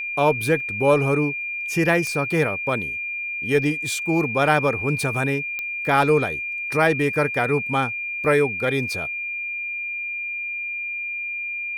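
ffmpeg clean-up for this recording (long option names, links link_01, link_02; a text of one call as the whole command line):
ffmpeg -i in.wav -af "adeclick=threshold=4,bandreject=frequency=2400:width=30" out.wav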